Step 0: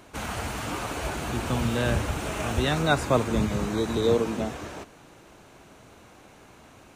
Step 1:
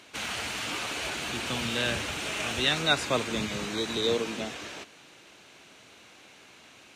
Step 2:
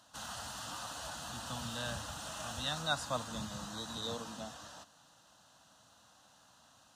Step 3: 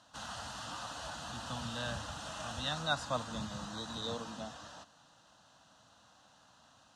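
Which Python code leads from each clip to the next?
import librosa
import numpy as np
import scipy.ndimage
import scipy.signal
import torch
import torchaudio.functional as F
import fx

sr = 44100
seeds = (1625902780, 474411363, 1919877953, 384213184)

y1 = fx.weighting(x, sr, curve='D')
y1 = y1 * 10.0 ** (-5.0 / 20.0)
y2 = fx.fixed_phaser(y1, sr, hz=940.0, stages=4)
y2 = y2 * 10.0 ** (-5.5 / 20.0)
y3 = fx.air_absorb(y2, sr, metres=60.0)
y3 = y3 * 10.0 ** (1.5 / 20.0)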